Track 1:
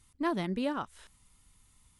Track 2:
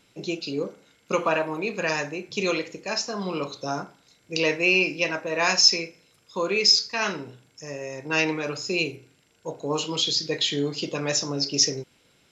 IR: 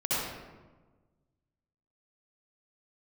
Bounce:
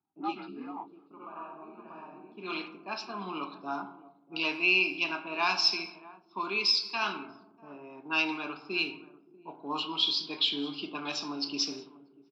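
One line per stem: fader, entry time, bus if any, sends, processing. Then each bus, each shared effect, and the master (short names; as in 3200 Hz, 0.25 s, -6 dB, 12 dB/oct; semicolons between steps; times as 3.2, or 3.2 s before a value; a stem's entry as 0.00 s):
-0.5 dB, 0.00 s, no send, no echo send, inharmonic rescaling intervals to 83%; comb 2.4 ms, depth 57%
-2.0 dB, 0.00 s, send -21 dB, echo send -19 dB, gate with hold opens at -51 dBFS; auto duck -23 dB, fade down 1.10 s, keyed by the first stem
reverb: on, RT60 1.3 s, pre-delay 58 ms
echo: echo 0.641 s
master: low-pass opened by the level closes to 520 Hz, open at -20.5 dBFS; HPF 240 Hz 24 dB/oct; fixed phaser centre 1900 Hz, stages 6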